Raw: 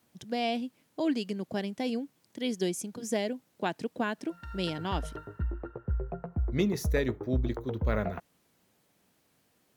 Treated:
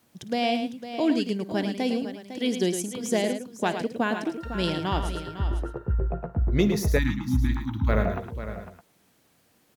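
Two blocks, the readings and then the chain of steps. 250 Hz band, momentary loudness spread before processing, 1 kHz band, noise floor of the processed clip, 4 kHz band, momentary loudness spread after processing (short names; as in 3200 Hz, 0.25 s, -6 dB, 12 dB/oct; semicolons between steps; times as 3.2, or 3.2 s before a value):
+6.0 dB, 8 LU, +6.0 dB, -65 dBFS, +6.0 dB, 8 LU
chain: tapped delay 55/108/504/613 ms -18/-8.5/-11.5/-17.5 dB; spectral delete 6.98–7.89, 340–790 Hz; gain +5 dB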